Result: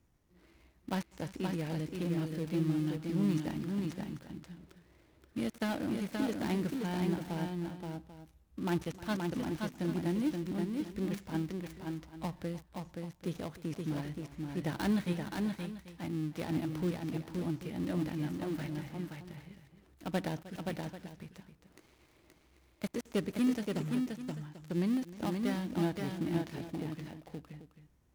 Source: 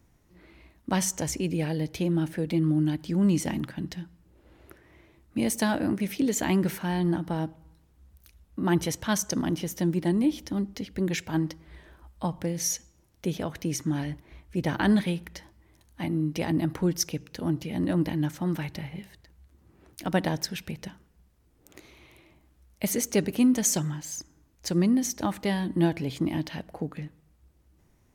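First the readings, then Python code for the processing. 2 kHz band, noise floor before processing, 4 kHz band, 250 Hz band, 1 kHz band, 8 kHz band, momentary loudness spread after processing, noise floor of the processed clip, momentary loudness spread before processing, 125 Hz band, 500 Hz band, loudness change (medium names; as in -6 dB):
-8.0 dB, -63 dBFS, -10.0 dB, -7.0 dB, -7.5 dB, -21.5 dB, 13 LU, -67 dBFS, 13 LU, -7.0 dB, -7.0 dB, -8.0 dB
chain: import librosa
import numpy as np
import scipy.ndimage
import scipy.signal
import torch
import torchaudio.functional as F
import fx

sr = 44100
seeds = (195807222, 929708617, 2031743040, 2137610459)

y = fx.dead_time(x, sr, dead_ms=0.19)
y = fx.echo_multitap(y, sr, ms=(310, 525, 790), db=(-17.5, -4.0, -14.5))
y = y * 10.0 ** (-8.5 / 20.0)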